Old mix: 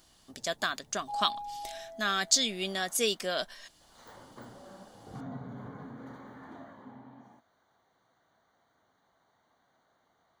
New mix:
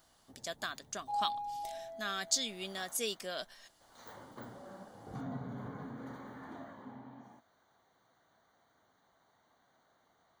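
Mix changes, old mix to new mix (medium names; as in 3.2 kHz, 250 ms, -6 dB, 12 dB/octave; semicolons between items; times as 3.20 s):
speech -8.5 dB; master: add treble shelf 8.8 kHz +6 dB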